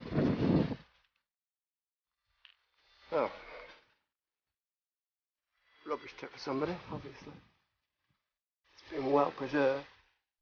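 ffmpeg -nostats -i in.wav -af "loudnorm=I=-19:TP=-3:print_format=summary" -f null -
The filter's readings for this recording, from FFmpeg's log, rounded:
Input Integrated:    -33.7 LUFS
Input True Peak:     -14.5 dBTP
Input LRA:             7.5 LU
Input Threshold:     -45.7 LUFS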